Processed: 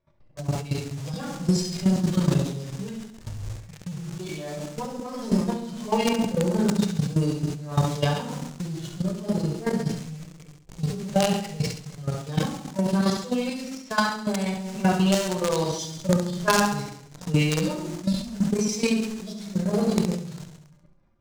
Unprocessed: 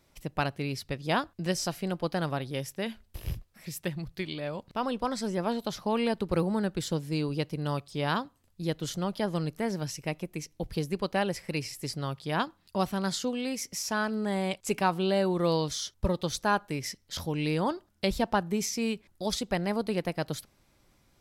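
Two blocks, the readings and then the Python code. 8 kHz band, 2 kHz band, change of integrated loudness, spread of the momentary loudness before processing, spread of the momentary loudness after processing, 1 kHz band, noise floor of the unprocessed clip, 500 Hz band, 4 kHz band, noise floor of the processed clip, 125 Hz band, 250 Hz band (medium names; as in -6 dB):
+4.0 dB, +2.5 dB, +5.0 dB, 8 LU, 13 LU, +2.0 dB, -67 dBFS, +2.5 dB, +3.0 dB, -51 dBFS, +8.0 dB, +6.5 dB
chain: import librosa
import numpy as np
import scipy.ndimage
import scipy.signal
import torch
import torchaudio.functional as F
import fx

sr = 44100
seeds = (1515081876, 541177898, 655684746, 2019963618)

p1 = fx.hpss_only(x, sr, part='harmonic')
p2 = fx.env_lowpass(p1, sr, base_hz=1200.0, full_db=-27.0)
p3 = fx.low_shelf(p2, sr, hz=270.0, db=-5.0)
p4 = fx.room_shoebox(p3, sr, seeds[0], volume_m3=780.0, walls='furnished', distance_m=5.5)
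p5 = fx.quant_companded(p4, sr, bits=2)
p6 = p4 + (p5 * 10.0 ** (-11.5 / 20.0))
p7 = fx.level_steps(p6, sr, step_db=11)
p8 = fx.transient(p7, sr, attack_db=6, sustain_db=1)
p9 = fx.tremolo_random(p8, sr, seeds[1], hz=3.5, depth_pct=55)
p10 = fx.peak_eq(p9, sr, hz=6800.0, db=13.0, octaves=1.4)
p11 = p10 + fx.echo_feedback(p10, sr, ms=68, feedback_pct=53, wet_db=-9.5, dry=0)
p12 = fx.sustainer(p11, sr, db_per_s=100.0)
y = p12 * 10.0 ** (1.0 / 20.0)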